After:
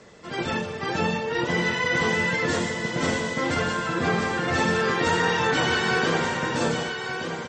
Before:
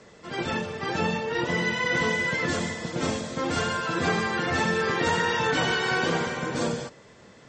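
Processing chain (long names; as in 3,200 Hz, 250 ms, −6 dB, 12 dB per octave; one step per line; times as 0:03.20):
0:03.54–0:04.48: high-shelf EQ 4,600 Hz −9.5 dB
single-tap delay 1,178 ms −7 dB
level +1.5 dB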